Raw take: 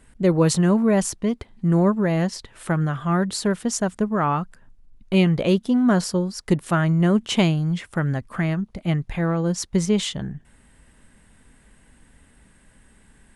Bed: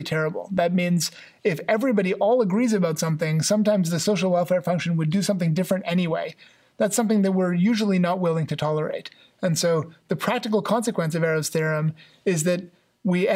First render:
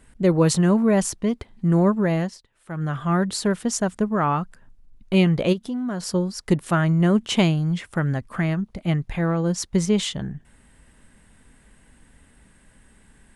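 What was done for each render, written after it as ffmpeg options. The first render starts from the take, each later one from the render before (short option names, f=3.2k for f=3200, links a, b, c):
-filter_complex "[0:a]asplit=3[a][b][c];[a]afade=t=out:st=5.52:d=0.02[d];[b]acompressor=threshold=-29dB:ratio=2.5:attack=3.2:release=140:knee=1:detection=peak,afade=t=in:st=5.52:d=0.02,afade=t=out:st=6.06:d=0.02[e];[c]afade=t=in:st=6.06:d=0.02[f];[d][e][f]amix=inputs=3:normalize=0,asplit=3[g][h][i];[g]atrim=end=2.42,asetpts=PTS-STARTPTS,afade=t=out:st=2.13:d=0.29:silence=0.112202[j];[h]atrim=start=2.42:end=2.66,asetpts=PTS-STARTPTS,volume=-19dB[k];[i]atrim=start=2.66,asetpts=PTS-STARTPTS,afade=t=in:d=0.29:silence=0.112202[l];[j][k][l]concat=n=3:v=0:a=1"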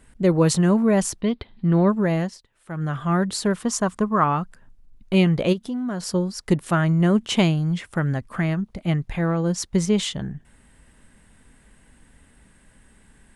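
-filter_complex "[0:a]asettb=1/sr,asplit=3[a][b][c];[a]atrim=end=1.214[d];[b]atrim=start=1.21:end=1.9,asetpts=PTS-STARTPTS,afade=t=in:d=0.004:c=qsin,afade=t=out:st=0.686:d=0.004:c=qsin,highshelf=f=5.2k:t=q:w=3:g=-10.5[e];[c]atrim=start=1.896[f];[d][e]acrossfade=d=0.004:c1=hsin:c2=qsin[g];[g][f]acrossfade=d=0.004:c1=qsin:c2=hsin,asettb=1/sr,asplit=3[h][i][j];[h]atrim=end=3.564[k];[i]atrim=start=3.56:end=4.24,asetpts=PTS-STARTPTS,afade=t=in:d=0.004:c=qsin,afade=t=out:st=0.676:d=0.004:c=qsin,equalizer=f=1.1k:w=4.1:g=11[l];[j]atrim=start=4.236[m];[k][l]acrossfade=d=0.004:c1=hsin:c2=qsin[n];[n][m]acrossfade=d=0.004:c1=qsin:c2=hsin"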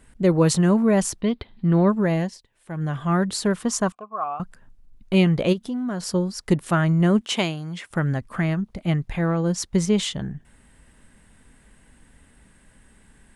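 -filter_complex "[0:a]asettb=1/sr,asplit=3[a][b][c];[a]atrim=end=2.144[d];[b]atrim=start=2.14:end=3.08,asetpts=PTS-STARTPTS,afade=t=in:d=0.004:c=qsin,afade=t=out:st=0.936:d=0.004:c=qsin,equalizer=f=1.3k:w=7:g=-10.5[e];[c]atrim=start=3.076[f];[d][e]acrossfade=d=0.004:c1=hsin:c2=qsin[g];[g][f]acrossfade=d=0.004:c1=qsin:c2=hsin,asettb=1/sr,asplit=3[h][i][j];[h]atrim=end=3.924[k];[i]atrim=start=3.92:end=4.4,asetpts=PTS-STARTPTS,afade=t=in:d=0.004:c=qsin,afade=t=out:st=0.476:d=0.004:c=qsin,asplit=3[l][m][n];[l]bandpass=f=730:t=q:w=8,volume=0dB[o];[m]bandpass=f=1.09k:t=q:w=8,volume=-6dB[p];[n]bandpass=f=2.44k:t=q:w=8,volume=-9dB[q];[o][p][q]amix=inputs=3:normalize=0[r];[j]atrim=start=4.396[s];[k][r]acrossfade=d=0.004:c1=hsin:c2=qsin[t];[t][s]acrossfade=d=0.004:c1=qsin:c2=hsin,asettb=1/sr,asplit=3[u][v][w];[u]atrim=end=7.214[x];[v]atrim=start=7.21:end=7.91,asetpts=PTS-STARTPTS,afade=t=in:d=0.004:c=qsin,afade=t=out:st=0.696:d=0.004:c=qsin,highpass=f=470:p=1[y];[w]atrim=start=7.906[z];[x][y]acrossfade=d=0.004:c1=hsin:c2=qsin[aa];[aa][z]acrossfade=d=0.004:c1=qsin:c2=hsin"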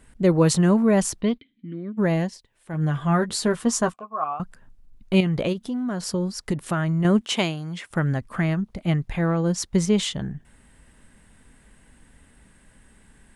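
-filter_complex "[0:a]asplit=3[a][b][c];[a]afade=t=out:st=1.37:d=0.02[d];[b]asplit=3[e][f][g];[e]bandpass=f=270:t=q:w=8,volume=0dB[h];[f]bandpass=f=2.29k:t=q:w=8,volume=-6dB[i];[g]bandpass=f=3.01k:t=q:w=8,volume=-9dB[j];[h][i][j]amix=inputs=3:normalize=0,afade=t=in:st=1.37:d=0.02,afade=t=out:st=1.97:d=0.02[k];[c]afade=t=in:st=1.97:d=0.02[l];[d][k][l]amix=inputs=3:normalize=0,asettb=1/sr,asplit=3[m][n][o];[m]atrim=end=2.724[p];[n]atrim=start=2.72:end=4.33,asetpts=PTS-STARTPTS,afade=t=in:d=0.004:c=qsin,afade=t=out:st=1.606:d=0.004:c=qsin,asplit=2[q][r];[r]adelay=13,volume=-6.5dB[s];[q][s]amix=inputs=2:normalize=0,atrim=end_sample=71001[t];[o]atrim=start=4.326[u];[p][t]acrossfade=d=0.004:c1=hsin:c2=qsin[v];[v][u]acrossfade=d=0.004:c1=qsin:c2=hsin,asettb=1/sr,asplit=3[w][x][y];[w]atrim=end=5.204[z];[x]atrim=start=5.2:end=7.05,asetpts=PTS-STARTPTS,afade=t=in:d=0.004:c=qsin,afade=t=out:st=1.846:d=0.004:c=qsin,acompressor=threshold=-19dB:ratio=6:attack=3.2:release=140:knee=1:detection=peak[aa];[y]atrim=start=7.046[ab];[z][aa]acrossfade=d=0.004:c1=hsin:c2=qsin[ac];[ac][ab]acrossfade=d=0.004:c1=qsin:c2=hsin"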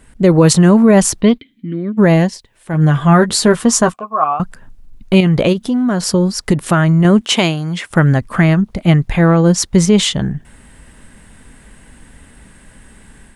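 -af "dynaudnorm=f=130:g=3:m=5dB,alimiter=level_in=7dB:limit=-1dB:release=50:level=0:latency=1"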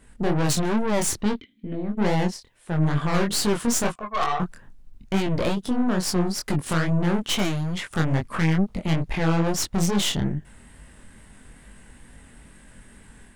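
-af "aeval=exprs='(tanh(7.08*val(0)+0.65)-tanh(0.65))/7.08':c=same,flanger=delay=19.5:depth=5.7:speed=2.3"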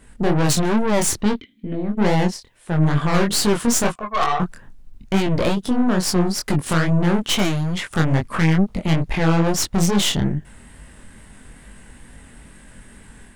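-af "volume=4.5dB"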